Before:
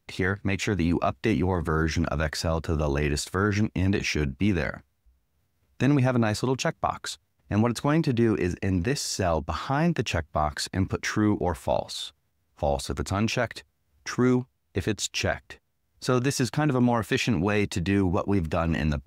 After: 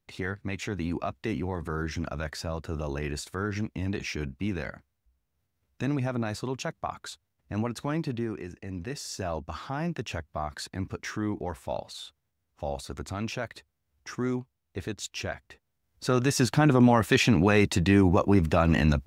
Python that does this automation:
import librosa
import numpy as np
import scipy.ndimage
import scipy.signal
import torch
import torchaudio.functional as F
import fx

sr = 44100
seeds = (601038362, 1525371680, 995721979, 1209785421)

y = fx.gain(x, sr, db=fx.line((8.09, -7.0), (8.51, -14.0), (9.1, -7.5), (15.45, -7.5), (16.58, 3.0)))